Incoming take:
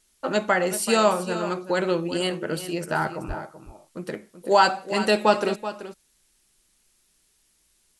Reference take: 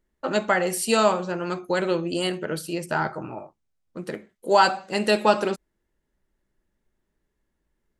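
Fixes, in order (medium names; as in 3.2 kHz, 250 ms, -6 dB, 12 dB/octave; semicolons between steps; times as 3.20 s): de-plosive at 3.27 s; expander -58 dBFS, range -21 dB; inverse comb 381 ms -12.5 dB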